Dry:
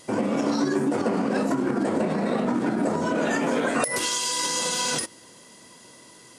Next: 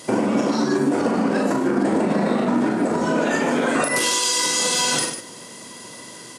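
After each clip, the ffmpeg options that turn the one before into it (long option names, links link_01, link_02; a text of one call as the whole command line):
ffmpeg -i in.wav -filter_complex "[0:a]highpass=100,acompressor=threshold=-27dB:ratio=6,asplit=2[link_01][link_02];[link_02]aecho=0:1:40.82|99.13|148.7:0.562|0.282|0.355[link_03];[link_01][link_03]amix=inputs=2:normalize=0,volume=8.5dB" out.wav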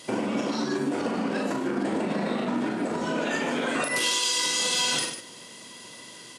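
ffmpeg -i in.wav -af "equalizer=frequency=3100:width=1.1:gain=7.5,volume=-8dB" out.wav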